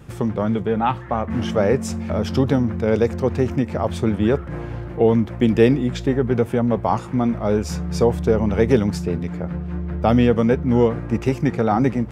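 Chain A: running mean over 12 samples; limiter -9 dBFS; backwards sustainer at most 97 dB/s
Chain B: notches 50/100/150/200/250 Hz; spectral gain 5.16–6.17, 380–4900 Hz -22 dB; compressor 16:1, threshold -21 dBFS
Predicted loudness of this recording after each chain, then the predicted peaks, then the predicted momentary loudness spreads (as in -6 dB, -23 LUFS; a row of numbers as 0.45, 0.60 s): -21.0, -27.5 LUFS; -8.0, -10.0 dBFS; 6, 2 LU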